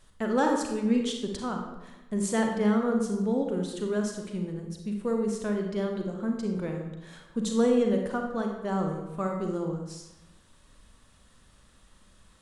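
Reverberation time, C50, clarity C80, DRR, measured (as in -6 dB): 1.0 s, 3.5 dB, 6.5 dB, 2.0 dB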